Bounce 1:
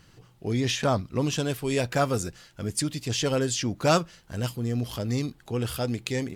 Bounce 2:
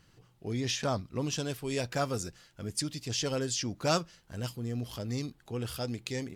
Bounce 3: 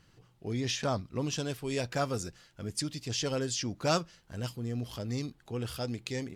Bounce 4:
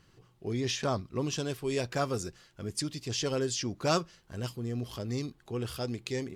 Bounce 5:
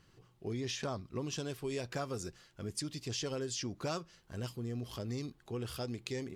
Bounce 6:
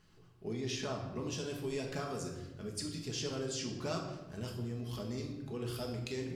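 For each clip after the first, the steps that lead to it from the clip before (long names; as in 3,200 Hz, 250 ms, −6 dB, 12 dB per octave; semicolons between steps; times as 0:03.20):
dynamic equaliser 5,300 Hz, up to +6 dB, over −45 dBFS, Q 1.8; level −7 dB
high-shelf EQ 9,700 Hz −5 dB
hollow resonant body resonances 380/1,100 Hz, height 6 dB
downward compressor 4 to 1, threshold −32 dBFS, peak gain reduction 9 dB; level −2.5 dB
rectangular room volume 560 cubic metres, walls mixed, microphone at 1.4 metres; level −3 dB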